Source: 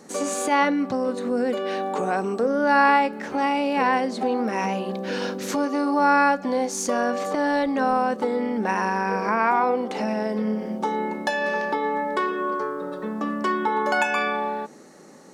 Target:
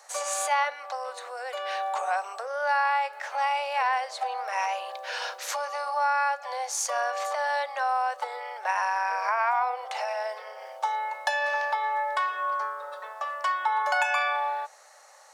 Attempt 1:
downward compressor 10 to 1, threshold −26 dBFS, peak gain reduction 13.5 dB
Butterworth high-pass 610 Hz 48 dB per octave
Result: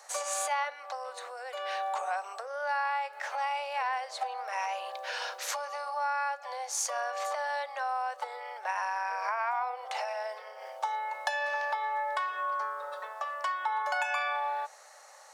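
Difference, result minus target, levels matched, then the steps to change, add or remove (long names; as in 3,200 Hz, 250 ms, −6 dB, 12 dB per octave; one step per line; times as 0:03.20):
downward compressor: peak gain reduction +6.5 dB
change: downward compressor 10 to 1, threshold −19 dBFS, peak gain reduction 7.5 dB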